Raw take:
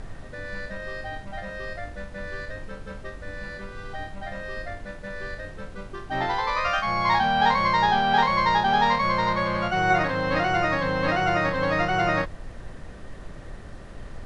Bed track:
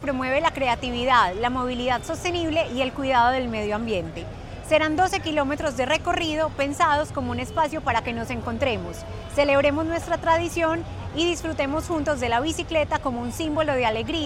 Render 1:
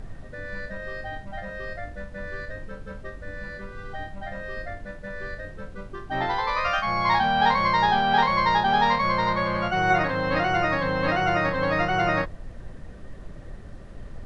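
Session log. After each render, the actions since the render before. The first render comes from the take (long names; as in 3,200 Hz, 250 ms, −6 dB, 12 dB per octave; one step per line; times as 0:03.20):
broadband denoise 6 dB, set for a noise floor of −41 dBFS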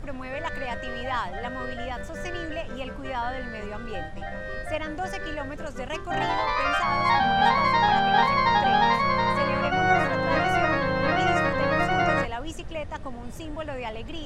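mix in bed track −11.5 dB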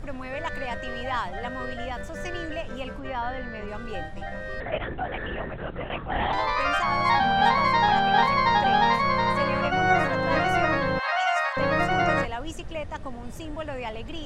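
0:02.99–0:03.68: high-frequency loss of the air 120 metres
0:04.60–0:06.33: linear-prediction vocoder at 8 kHz whisper
0:10.99–0:11.57: Butterworth high-pass 630 Hz 72 dB per octave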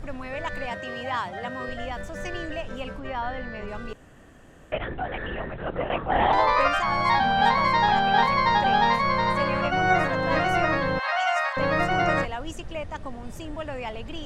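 0:00.70–0:01.69: high-pass filter 91 Hz 24 dB per octave
0:03.93–0:04.72: fill with room tone
0:05.66–0:06.68: parametric band 600 Hz +7 dB 2.5 octaves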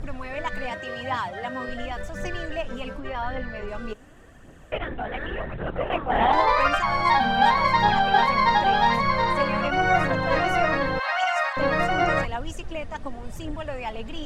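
phase shifter 0.89 Hz, delay 4.8 ms, feedback 40%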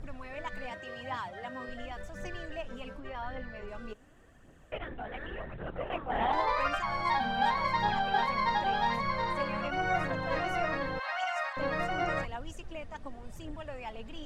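level −9.5 dB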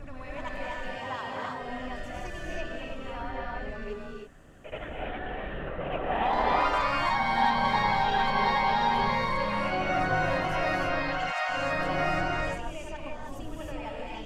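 backwards echo 78 ms −7 dB
reverb whose tail is shaped and stops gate 350 ms rising, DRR −2 dB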